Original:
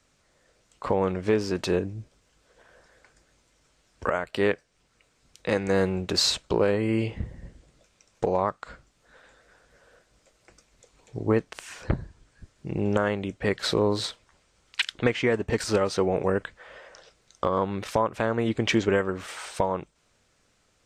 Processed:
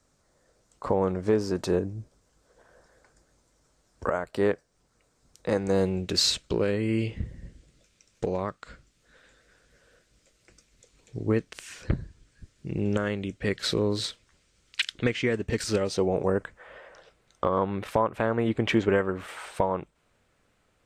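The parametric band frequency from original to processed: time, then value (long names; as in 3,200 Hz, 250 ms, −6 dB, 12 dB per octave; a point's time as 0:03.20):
parametric band −10 dB 1.3 octaves
0:05.55 2,700 Hz
0:06.15 850 Hz
0:15.71 850 Hz
0:16.74 5,800 Hz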